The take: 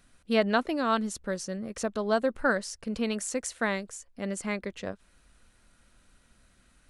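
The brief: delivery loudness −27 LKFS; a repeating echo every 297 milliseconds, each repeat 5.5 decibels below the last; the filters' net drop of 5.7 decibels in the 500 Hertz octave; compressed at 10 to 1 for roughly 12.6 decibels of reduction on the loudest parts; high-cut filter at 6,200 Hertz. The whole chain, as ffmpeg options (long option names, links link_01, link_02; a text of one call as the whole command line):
ffmpeg -i in.wav -af "lowpass=6200,equalizer=frequency=500:width_type=o:gain=-7.5,acompressor=threshold=-35dB:ratio=10,aecho=1:1:297|594|891|1188|1485|1782|2079:0.531|0.281|0.149|0.079|0.0419|0.0222|0.0118,volume=12.5dB" out.wav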